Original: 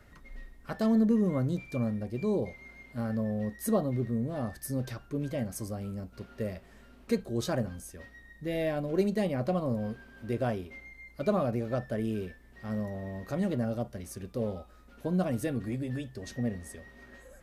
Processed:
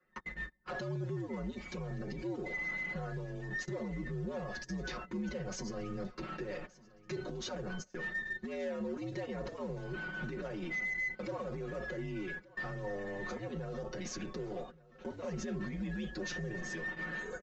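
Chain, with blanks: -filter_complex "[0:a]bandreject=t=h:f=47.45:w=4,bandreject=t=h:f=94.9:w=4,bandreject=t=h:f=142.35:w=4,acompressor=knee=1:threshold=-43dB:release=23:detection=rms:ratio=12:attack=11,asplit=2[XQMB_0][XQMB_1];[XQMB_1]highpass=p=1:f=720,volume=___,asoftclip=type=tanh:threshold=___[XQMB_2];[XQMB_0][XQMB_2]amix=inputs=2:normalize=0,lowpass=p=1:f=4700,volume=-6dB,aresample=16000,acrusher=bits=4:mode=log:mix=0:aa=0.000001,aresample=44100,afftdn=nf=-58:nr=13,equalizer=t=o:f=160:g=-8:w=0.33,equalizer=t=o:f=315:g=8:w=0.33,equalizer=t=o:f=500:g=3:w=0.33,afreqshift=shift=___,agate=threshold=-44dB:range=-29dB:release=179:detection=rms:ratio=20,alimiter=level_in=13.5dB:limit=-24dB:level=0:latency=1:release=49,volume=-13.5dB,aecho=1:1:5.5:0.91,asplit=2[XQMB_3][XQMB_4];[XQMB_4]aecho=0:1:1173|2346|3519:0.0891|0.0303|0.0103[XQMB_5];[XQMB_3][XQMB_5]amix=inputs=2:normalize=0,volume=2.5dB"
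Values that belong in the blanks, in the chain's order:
17dB, -30.5dB, -80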